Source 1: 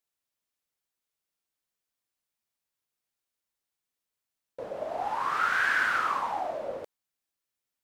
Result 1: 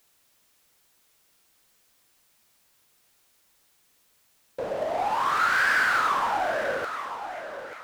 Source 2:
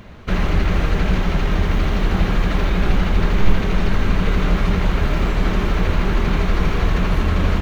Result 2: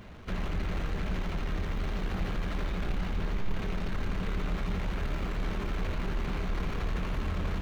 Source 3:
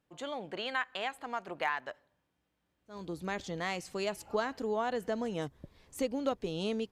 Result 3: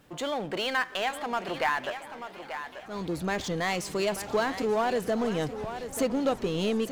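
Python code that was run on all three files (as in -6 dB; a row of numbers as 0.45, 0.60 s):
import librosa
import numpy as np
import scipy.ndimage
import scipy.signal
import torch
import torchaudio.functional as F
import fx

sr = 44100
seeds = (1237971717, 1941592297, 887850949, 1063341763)

y = fx.echo_thinned(x, sr, ms=886, feedback_pct=16, hz=190.0, wet_db=-14.0)
y = fx.power_curve(y, sr, exponent=0.7)
y = fx.echo_warbled(y, sr, ms=394, feedback_pct=79, rate_hz=2.8, cents=184, wet_db=-21)
y = y * 10.0 ** (-30 / 20.0) / np.sqrt(np.mean(np.square(y)))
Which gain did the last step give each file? +1.0, -18.5, +3.0 dB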